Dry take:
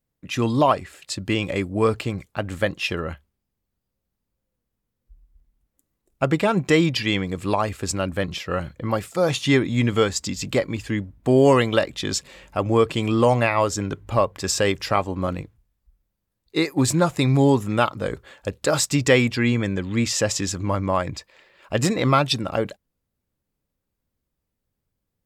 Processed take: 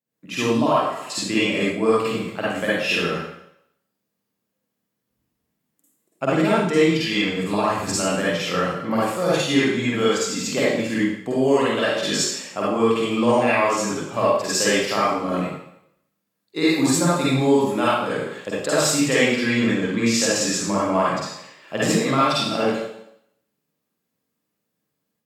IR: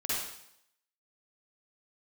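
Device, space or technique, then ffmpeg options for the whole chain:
far laptop microphone: -filter_complex "[0:a]asettb=1/sr,asplit=3[s0][s1][s2];[s0]atrim=end=7.044[s3];[s1]atrim=start=7.04:end=7.92,asetpts=PTS-STARTPTS,afade=t=in:d=0.004:c=qsin,afade=t=out:st=0.876:d=0.004:c=qsin,asubboost=boost=11.5:cutoff=160[s4];[s2]atrim=start=7.916[s5];[s3][s4]acrossfade=d=0.004:c1=hsin:c2=qsin[s6];[s6][s5]acrossfade=d=0.004:c1=qsin:c2=hsin[s7];[1:a]atrim=start_sample=2205[s8];[s7][s8]afir=irnorm=-1:irlink=0,highpass=f=150:w=0.5412,highpass=f=150:w=1.3066,dynaudnorm=f=120:g=3:m=1.88,volume=0.531"

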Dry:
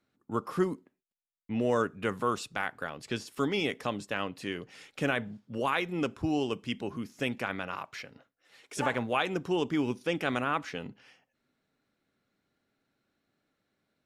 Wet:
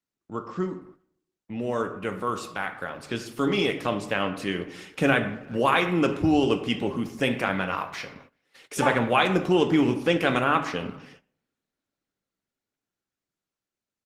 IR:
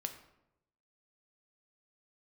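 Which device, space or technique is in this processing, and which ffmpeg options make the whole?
speakerphone in a meeting room: -filter_complex "[1:a]atrim=start_sample=2205[s0];[0:a][s0]afir=irnorm=-1:irlink=0,asplit=2[s1][s2];[s2]adelay=390,highpass=300,lowpass=3400,asoftclip=type=hard:threshold=0.0668,volume=0.0501[s3];[s1][s3]amix=inputs=2:normalize=0,dynaudnorm=f=730:g=9:m=3.16,agate=range=0.178:threshold=0.00355:ratio=16:detection=peak" -ar 48000 -c:a libopus -b:a 20k

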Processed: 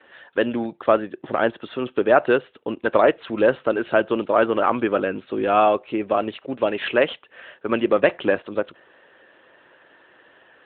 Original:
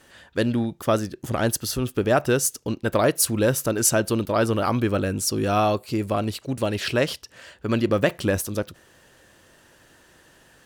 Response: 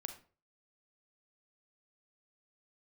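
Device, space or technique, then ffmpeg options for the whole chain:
telephone: -af "highpass=360,lowpass=3200,volume=1.88" -ar 8000 -c:a libopencore_amrnb -b:a 12200

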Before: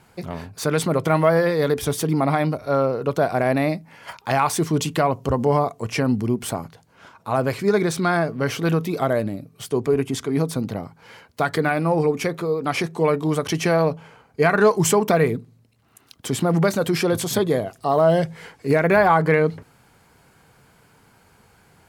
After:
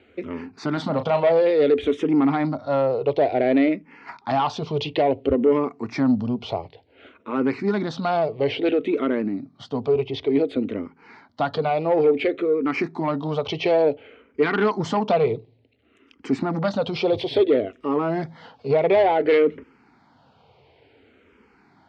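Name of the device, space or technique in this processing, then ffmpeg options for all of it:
barber-pole phaser into a guitar amplifier: -filter_complex "[0:a]asplit=2[s0][s1];[s1]afreqshift=-0.57[s2];[s0][s2]amix=inputs=2:normalize=1,asoftclip=type=tanh:threshold=0.158,highpass=82,equalizer=f=120:t=q:w=4:g=-7,equalizer=f=170:t=q:w=4:g=-10,equalizer=f=270:t=q:w=4:g=5,equalizer=f=410:t=q:w=4:g=3,equalizer=f=1100:t=q:w=4:g=-5,equalizer=f=1600:t=q:w=4:g=-7,lowpass=f=3800:w=0.5412,lowpass=f=3800:w=1.3066,asettb=1/sr,asplit=3[s3][s4][s5];[s3]atrim=end=0.734[s6];[s4]atrim=start=0.73:end=1.32,asetpts=PTS-STARTPTS,afade=t=in:d=0.004:c=qsin,afade=t=out:st=0.586:d=0.004:c=qsin,asplit=2[s7][s8];[s8]adelay=35,volume=0.355[s9];[s7][s9]amix=inputs=2:normalize=0,atrim=end_sample=26019[s10];[s5]atrim=start=1.316[s11];[s6][s10]acrossfade=d=0.004:c1=hsin:c2=qsin[s12];[s12][s11]acrossfade=d=0.004:c1=qsin:c2=hsin,volume=1.58"

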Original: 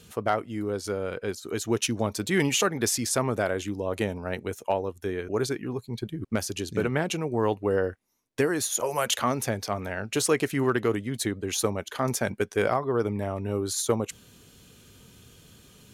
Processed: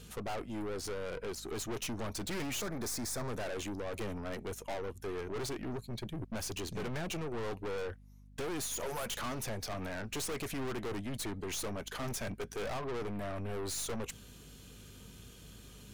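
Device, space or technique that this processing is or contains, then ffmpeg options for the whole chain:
valve amplifier with mains hum: -filter_complex "[0:a]aeval=exprs='(tanh(63.1*val(0)+0.4)-tanh(0.4))/63.1':c=same,aeval=exprs='val(0)+0.00178*(sin(2*PI*50*n/s)+sin(2*PI*2*50*n/s)/2+sin(2*PI*3*50*n/s)/3+sin(2*PI*4*50*n/s)/4+sin(2*PI*5*50*n/s)/5)':c=same,asettb=1/sr,asplit=3[s0][s1][s2];[s0]atrim=end=2.604[s3];[s1]atrim=start=2.6:end=3.3,asetpts=PTS-STARTPTS,afade=t=in:d=0.004:c=qsin,afade=t=out:st=0.696:d=0.004:c=qsin,equalizer=f=2900:t=o:w=0.39:g=-13.5[s4];[s2]atrim=start=3.296[s5];[s3][s4]acrossfade=d=0.004:c1=hsin:c2=qsin[s6];[s6][s5]acrossfade=d=0.004:c1=qsin:c2=hsin"

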